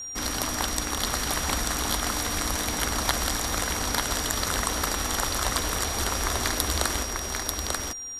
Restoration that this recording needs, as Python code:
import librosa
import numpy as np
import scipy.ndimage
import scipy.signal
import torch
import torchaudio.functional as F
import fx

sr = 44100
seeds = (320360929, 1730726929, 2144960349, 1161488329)

y = fx.notch(x, sr, hz=5700.0, q=30.0)
y = fx.fix_echo_inverse(y, sr, delay_ms=890, level_db=-3.0)